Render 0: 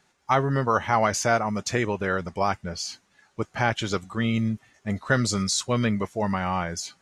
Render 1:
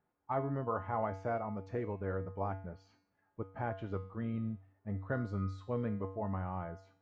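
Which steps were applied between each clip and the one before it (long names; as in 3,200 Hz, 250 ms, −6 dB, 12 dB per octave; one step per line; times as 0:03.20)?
low-pass filter 1,000 Hz 12 dB per octave
tuned comb filter 96 Hz, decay 0.53 s, harmonics odd, mix 80%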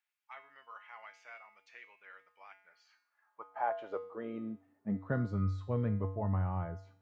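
high-pass filter sweep 2,500 Hz → 95 Hz, 0:02.53–0:05.59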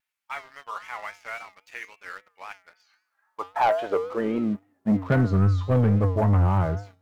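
leveller curve on the samples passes 2
pitch vibrato 3.7 Hz 89 cents
level +8 dB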